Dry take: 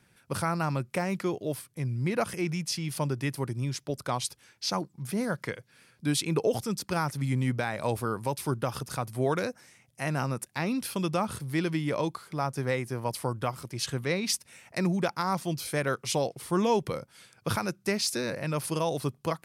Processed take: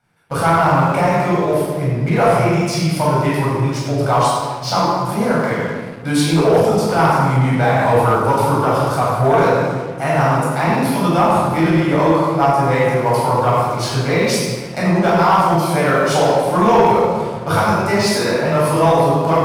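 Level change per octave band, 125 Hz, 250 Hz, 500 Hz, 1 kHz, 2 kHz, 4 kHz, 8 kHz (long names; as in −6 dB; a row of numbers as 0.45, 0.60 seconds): +14.0, +13.5, +16.5, +19.0, +14.0, +9.5, +7.0 decibels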